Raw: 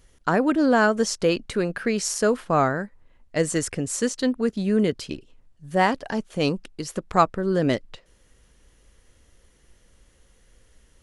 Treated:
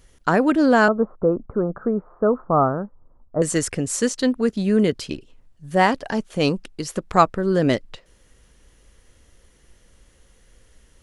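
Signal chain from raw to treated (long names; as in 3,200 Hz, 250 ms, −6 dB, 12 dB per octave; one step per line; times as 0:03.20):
0:00.88–0:03.42: Chebyshev low-pass filter 1,300 Hz, order 5
level +3 dB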